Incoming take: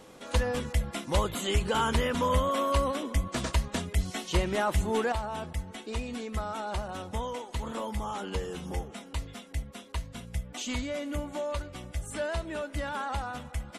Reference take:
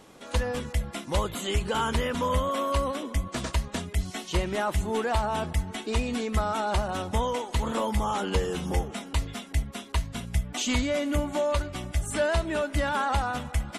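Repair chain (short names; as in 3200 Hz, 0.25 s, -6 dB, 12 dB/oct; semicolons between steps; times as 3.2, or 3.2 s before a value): notch 510 Hz, Q 30; gain correction +7 dB, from 5.12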